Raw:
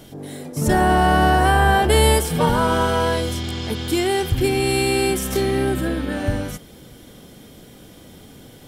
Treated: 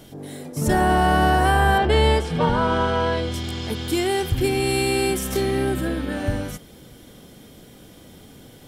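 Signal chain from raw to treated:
0:01.78–0:03.34: low-pass filter 4,300 Hz 12 dB per octave
level −2 dB

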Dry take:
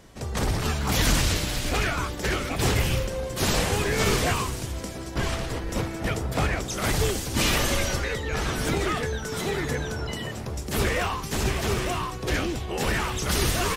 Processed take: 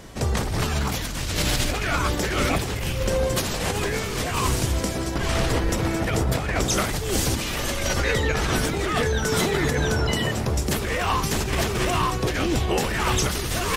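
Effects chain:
compressor whose output falls as the input rises −29 dBFS, ratio −1
level +5.5 dB

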